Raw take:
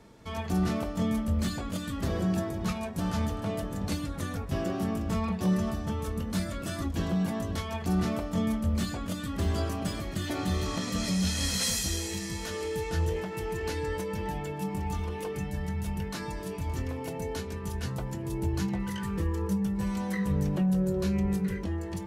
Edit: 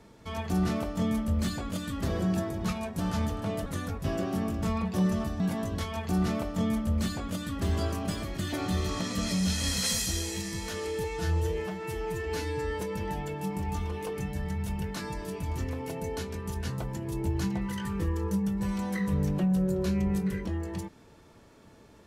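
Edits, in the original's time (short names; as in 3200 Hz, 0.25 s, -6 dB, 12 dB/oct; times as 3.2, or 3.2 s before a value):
3.66–4.13 cut
5.87–7.17 cut
12.81–13.99 stretch 1.5×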